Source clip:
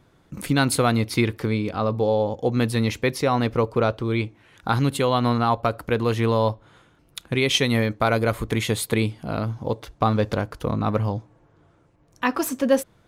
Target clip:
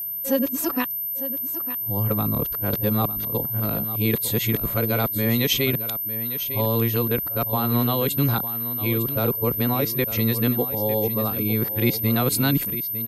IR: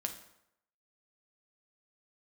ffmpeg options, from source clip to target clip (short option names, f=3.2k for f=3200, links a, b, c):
-filter_complex "[0:a]areverse,acrossover=split=400|3000[a][b][c];[b]acompressor=threshold=-37dB:ratio=1.5[d];[a][d][c]amix=inputs=3:normalize=0,aeval=exprs='val(0)+0.0447*sin(2*PI*13000*n/s)':c=same,asplit=2[e][f];[f]aecho=0:1:903:0.237[g];[e][g]amix=inputs=2:normalize=0"